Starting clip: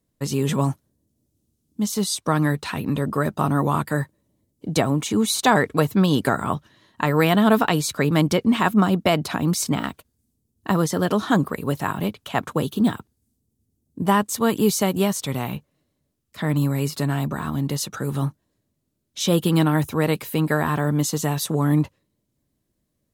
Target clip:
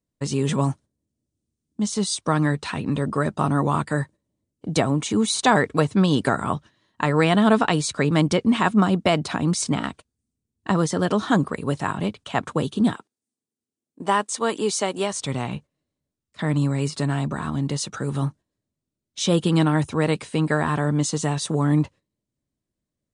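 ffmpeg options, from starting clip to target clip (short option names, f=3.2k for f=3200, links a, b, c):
-filter_complex "[0:a]asettb=1/sr,asplit=3[a][b][c];[a]atrim=end=12.944[d];[b]atrim=start=12.94:end=15.13,asetpts=PTS-STARTPTS,afade=t=in:d=0.004:c=qsin,afade=t=out:st=2.186:d=0.004:c=qsin,highpass=350[e];[c]atrim=start=15.126[f];[d][e]acrossfade=d=0.004:c1=hsin:c2=qsin[g];[g][f]acrossfade=d=0.004:c1=qsin:c2=hsin,agate=range=-9dB:threshold=-40dB:ratio=16:detection=peak" -ar 22050 -c:a libmp3lame -b:a 96k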